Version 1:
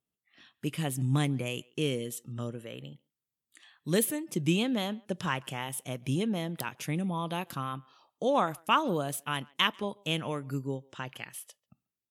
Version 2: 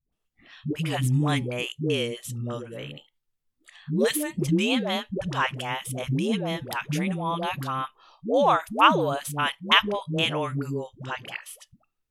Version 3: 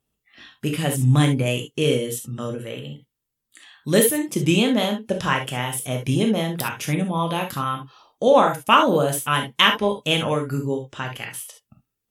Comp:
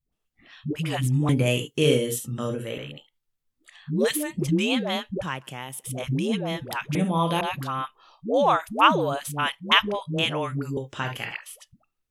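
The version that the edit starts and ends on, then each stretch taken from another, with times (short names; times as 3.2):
2
1.29–2.78 from 3
5.23–5.84 from 1
6.95–7.41 from 3
10.77–11.31 from 3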